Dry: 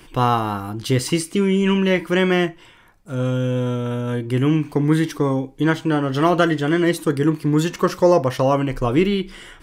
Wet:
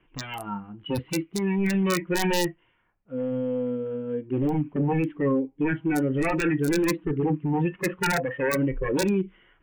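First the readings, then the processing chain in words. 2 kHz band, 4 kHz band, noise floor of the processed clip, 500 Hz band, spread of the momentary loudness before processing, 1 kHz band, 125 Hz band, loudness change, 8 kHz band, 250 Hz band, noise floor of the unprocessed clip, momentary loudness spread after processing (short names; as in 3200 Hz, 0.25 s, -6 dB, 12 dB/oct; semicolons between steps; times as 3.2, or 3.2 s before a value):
-4.5 dB, -7.5 dB, -66 dBFS, -7.5 dB, 7 LU, -9.0 dB, -8.5 dB, -6.5 dB, -3.0 dB, -6.0 dB, -47 dBFS, 8 LU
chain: wavefolder -16.5 dBFS; steep low-pass 3100 Hz 72 dB/oct; wrapped overs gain 15.5 dB; spectral noise reduction 18 dB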